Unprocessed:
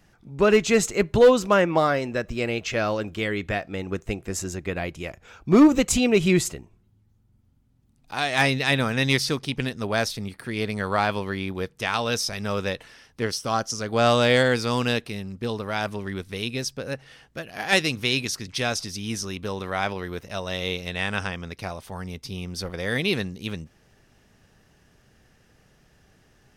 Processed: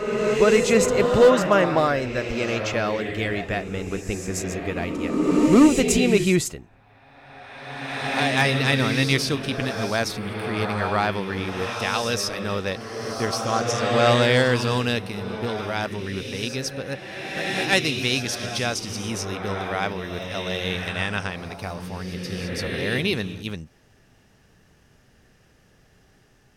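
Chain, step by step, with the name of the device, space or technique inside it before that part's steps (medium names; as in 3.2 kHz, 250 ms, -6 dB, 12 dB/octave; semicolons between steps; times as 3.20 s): reverse reverb (reverse; reverberation RT60 2.6 s, pre-delay 118 ms, DRR 3.5 dB; reverse)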